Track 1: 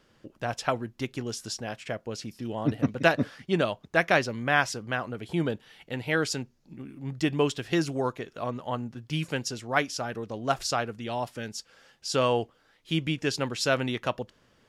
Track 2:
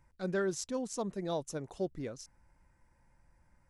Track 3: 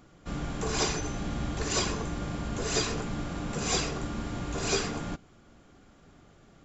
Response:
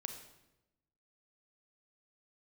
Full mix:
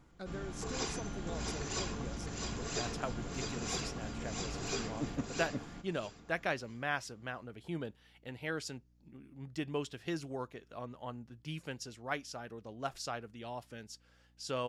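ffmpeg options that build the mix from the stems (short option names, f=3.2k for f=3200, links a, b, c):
-filter_complex "[0:a]adelay=2350,volume=-12dB[a];[1:a]acompressor=threshold=-42dB:ratio=6,volume=-0.5dB[b];[2:a]bandreject=f=590:w=12,volume=-9.5dB,asplit=2[c][d];[d]volume=-4dB,aecho=0:1:659|1318|1977|2636:1|0.22|0.0484|0.0106[e];[a][b][c][e]amix=inputs=4:normalize=0,aeval=exprs='val(0)+0.000447*(sin(2*PI*60*n/s)+sin(2*PI*2*60*n/s)/2+sin(2*PI*3*60*n/s)/3+sin(2*PI*4*60*n/s)/4+sin(2*PI*5*60*n/s)/5)':c=same"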